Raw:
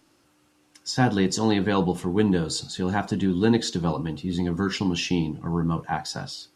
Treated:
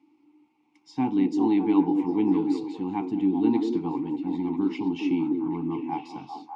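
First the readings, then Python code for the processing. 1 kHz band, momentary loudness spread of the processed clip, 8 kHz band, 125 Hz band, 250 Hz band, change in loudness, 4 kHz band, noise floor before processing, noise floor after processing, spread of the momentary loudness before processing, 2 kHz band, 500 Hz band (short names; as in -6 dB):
-3.5 dB, 9 LU, under -20 dB, -12.0 dB, +1.5 dB, -1.0 dB, under -15 dB, -64 dBFS, -66 dBFS, 8 LU, -13.5 dB, -4.5 dB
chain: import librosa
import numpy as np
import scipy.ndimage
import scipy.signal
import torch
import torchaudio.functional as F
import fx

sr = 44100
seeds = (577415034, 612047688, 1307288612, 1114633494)

p1 = fx.vowel_filter(x, sr, vowel='u')
p2 = p1 + fx.echo_stepped(p1, sr, ms=199, hz=370.0, octaves=0.7, feedback_pct=70, wet_db=-1, dry=0)
y = F.gain(torch.from_numpy(p2), 7.0).numpy()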